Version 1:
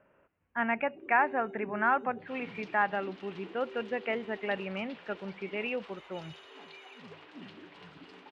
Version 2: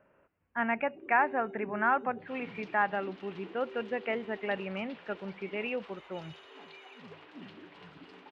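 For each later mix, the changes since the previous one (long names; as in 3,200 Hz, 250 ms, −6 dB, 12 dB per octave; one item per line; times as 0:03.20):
master: add high-shelf EQ 4,600 Hz −5.5 dB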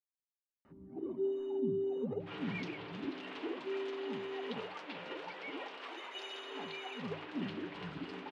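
speech: muted
first sound +9.5 dB
second sound +6.0 dB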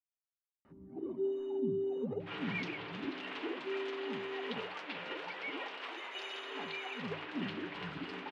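second sound: add parametric band 2,000 Hz +5 dB 2.2 octaves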